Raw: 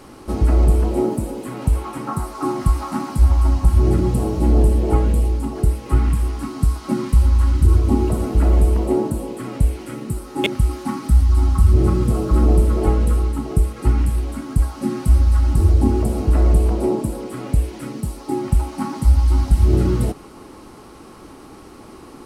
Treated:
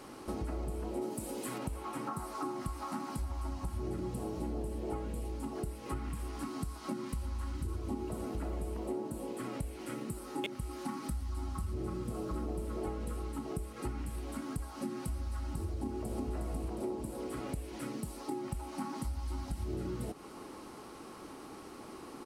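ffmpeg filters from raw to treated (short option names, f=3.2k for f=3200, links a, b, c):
-filter_complex "[0:a]asplit=3[a][b][c];[a]afade=t=out:st=1.01:d=0.02[d];[b]highshelf=f=2.2k:g=9,afade=t=in:st=1.01:d=0.02,afade=t=out:st=1.57:d=0.02[e];[c]afade=t=in:st=1.57:d=0.02[f];[d][e][f]amix=inputs=3:normalize=0,asplit=2[g][h];[h]afade=t=in:st=15.75:d=0.01,afade=t=out:st=16.32:d=0.01,aecho=0:1:360|720|1080|1440|1800:0.794328|0.317731|0.127093|0.050837|0.0203348[i];[g][i]amix=inputs=2:normalize=0,lowshelf=f=120:g=-11,acompressor=threshold=-30dB:ratio=4,volume=-6dB"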